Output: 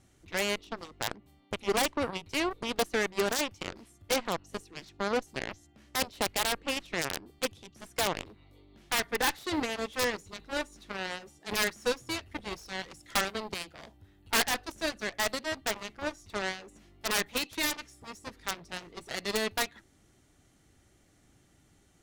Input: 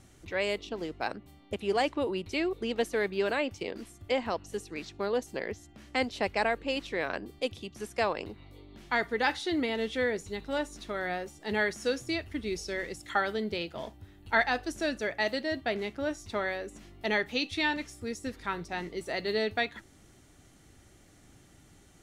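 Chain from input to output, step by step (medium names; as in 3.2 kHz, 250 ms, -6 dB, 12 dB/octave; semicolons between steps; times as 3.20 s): integer overflow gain 18.5 dB; Chebyshev shaper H 3 -30 dB, 4 -20 dB, 7 -14 dB, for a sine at -18.5 dBFS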